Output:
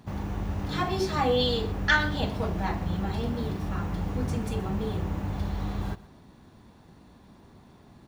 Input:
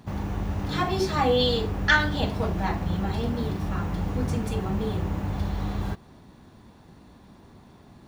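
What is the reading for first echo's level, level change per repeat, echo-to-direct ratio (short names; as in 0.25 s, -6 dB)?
-19.0 dB, no steady repeat, -19.0 dB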